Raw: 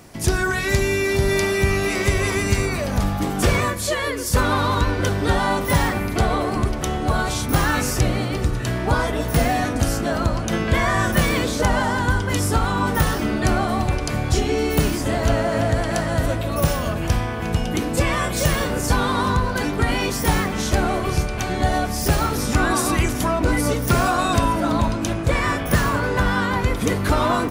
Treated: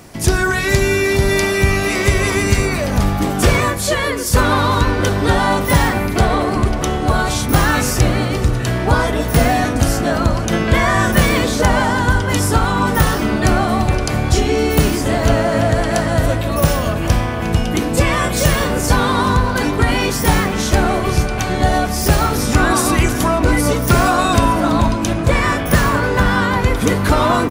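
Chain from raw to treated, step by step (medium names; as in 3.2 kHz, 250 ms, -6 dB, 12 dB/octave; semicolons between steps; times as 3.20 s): echo from a far wall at 82 m, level -13 dB; 6.24–6.90 s: loudspeaker Doppler distortion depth 0.1 ms; trim +5 dB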